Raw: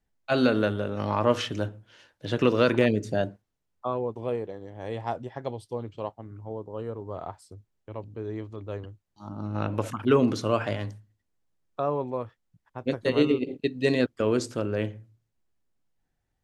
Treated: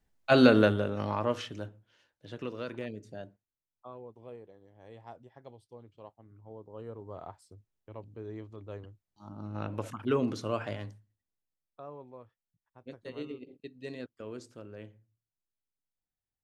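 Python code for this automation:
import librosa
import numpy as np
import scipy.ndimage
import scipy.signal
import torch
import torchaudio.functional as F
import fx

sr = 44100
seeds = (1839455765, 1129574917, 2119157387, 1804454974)

y = fx.gain(x, sr, db=fx.line((0.61, 2.5), (1.35, -8.5), (2.58, -17.0), (5.93, -17.0), (6.98, -7.5), (10.8, -7.5), (11.81, -18.0)))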